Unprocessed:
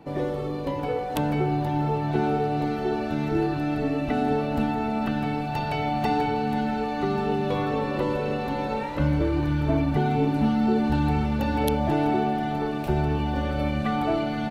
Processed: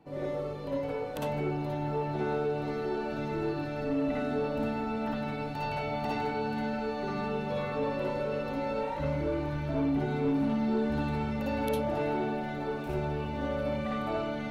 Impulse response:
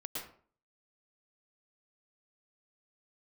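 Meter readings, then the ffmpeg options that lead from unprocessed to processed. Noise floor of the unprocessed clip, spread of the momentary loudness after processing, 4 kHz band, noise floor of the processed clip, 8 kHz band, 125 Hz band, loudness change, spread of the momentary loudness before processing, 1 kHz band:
-30 dBFS, 5 LU, -7.5 dB, -36 dBFS, no reading, -9.0 dB, -6.5 dB, 5 LU, -8.0 dB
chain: -filter_complex "[1:a]atrim=start_sample=2205,asetrate=88200,aresample=44100[s0];[0:a][s0]afir=irnorm=-1:irlink=0,asoftclip=type=tanh:threshold=0.0944"

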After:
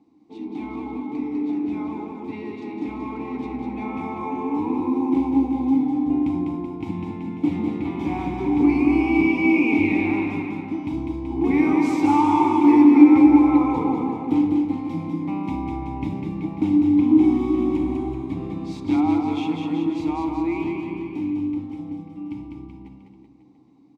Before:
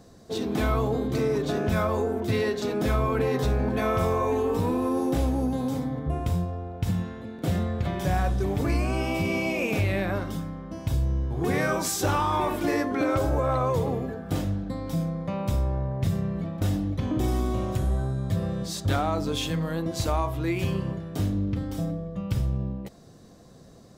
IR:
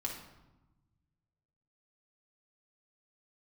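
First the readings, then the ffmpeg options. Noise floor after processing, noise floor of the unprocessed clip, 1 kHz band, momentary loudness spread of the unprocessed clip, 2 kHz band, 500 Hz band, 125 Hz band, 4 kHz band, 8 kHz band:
-47 dBFS, -50 dBFS, +4.0 dB, 6 LU, +2.5 dB, -1.5 dB, -7.5 dB, no reading, under -10 dB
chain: -filter_complex "[0:a]asplit=3[s0][s1][s2];[s0]bandpass=f=300:t=q:w=8,volume=1[s3];[s1]bandpass=f=870:t=q:w=8,volume=0.501[s4];[s2]bandpass=f=2240:t=q:w=8,volume=0.355[s5];[s3][s4][s5]amix=inputs=3:normalize=0,dynaudnorm=f=940:g=11:m=3.55,aecho=1:1:200|380|542|687.8|819:0.631|0.398|0.251|0.158|0.1,asplit=2[s6][s7];[1:a]atrim=start_sample=2205[s8];[s7][s8]afir=irnorm=-1:irlink=0,volume=0.501[s9];[s6][s9]amix=inputs=2:normalize=0,volume=1.19"

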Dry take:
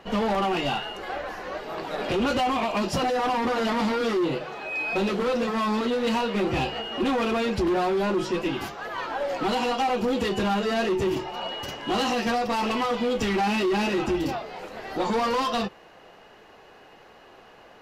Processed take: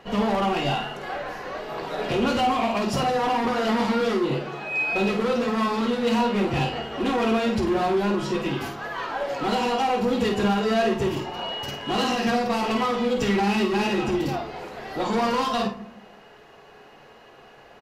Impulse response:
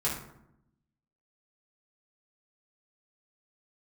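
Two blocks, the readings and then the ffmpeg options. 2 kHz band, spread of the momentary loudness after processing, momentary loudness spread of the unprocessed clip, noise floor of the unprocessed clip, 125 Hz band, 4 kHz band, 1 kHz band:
+1.5 dB, 9 LU, 9 LU, -51 dBFS, +4.0 dB, +1.0 dB, +1.5 dB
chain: -filter_complex "[0:a]asplit=2[s0][s1];[s1]adelay=50,volume=0.447[s2];[s0][s2]amix=inputs=2:normalize=0,asplit=2[s3][s4];[1:a]atrim=start_sample=2205[s5];[s4][s5]afir=irnorm=-1:irlink=0,volume=0.237[s6];[s3][s6]amix=inputs=2:normalize=0,volume=0.794"

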